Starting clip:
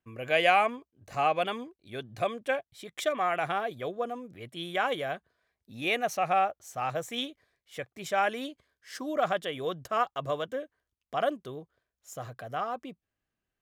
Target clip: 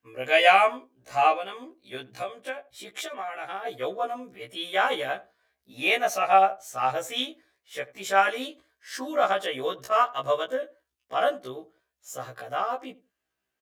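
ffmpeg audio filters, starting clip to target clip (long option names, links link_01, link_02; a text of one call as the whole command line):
ffmpeg -i in.wav -filter_complex "[0:a]highpass=frequency=110:poles=1,equalizer=frequency=140:width=0.69:gain=-10,asplit=3[link_01][link_02][link_03];[link_01]afade=type=out:start_time=1.36:duration=0.02[link_04];[link_02]acompressor=threshold=-37dB:ratio=6,afade=type=in:start_time=1.36:duration=0.02,afade=type=out:start_time=3.65:duration=0.02[link_05];[link_03]afade=type=in:start_time=3.65:duration=0.02[link_06];[link_04][link_05][link_06]amix=inputs=3:normalize=0,asplit=2[link_07][link_08];[link_08]adelay=83,lowpass=frequency=890:poles=1,volume=-17dB,asplit=2[link_09][link_10];[link_10]adelay=83,lowpass=frequency=890:poles=1,volume=0.2[link_11];[link_07][link_09][link_11]amix=inputs=3:normalize=0,afftfilt=real='re*1.73*eq(mod(b,3),0)':imag='im*1.73*eq(mod(b,3),0)':win_size=2048:overlap=0.75,volume=8dB" out.wav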